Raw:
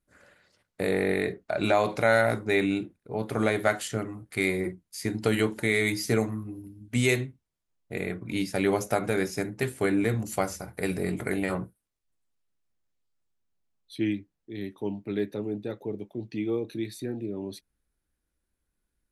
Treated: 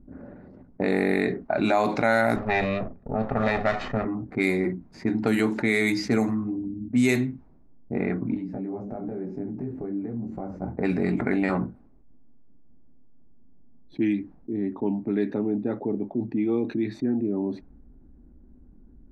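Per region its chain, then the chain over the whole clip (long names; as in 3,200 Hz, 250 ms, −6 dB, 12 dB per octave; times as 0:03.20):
0:02.36–0:04.05: lower of the sound and its delayed copy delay 1.6 ms + high-frequency loss of the air 150 metres
0:08.34–0:10.62: downward compressor 5 to 1, threshold −37 dBFS + micro pitch shift up and down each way 32 cents
whole clip: low-pass that shuts in the quiet parts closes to 360 Hz, open at −20.5 dBFS; thirty-one-band graphic EQ 100 Hz −10 dB, 250 Hz +10 dB, 500 Hz −5 dB, 800 Hz +4 dB, 3,150 Hz −8 dB, 10,000 Hz −8 dB; envelope flattener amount 50%; level −2 dB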